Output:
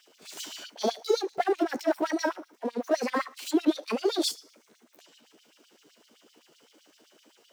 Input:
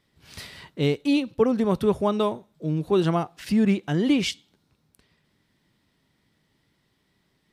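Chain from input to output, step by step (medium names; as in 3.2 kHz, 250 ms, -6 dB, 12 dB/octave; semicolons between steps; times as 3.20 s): rotating-head pitch shifter +7.5 st; power-law waveshaper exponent 0.7; LFO high-pass sine 7.8 Hz 280–4300 Hz; trim -8 dB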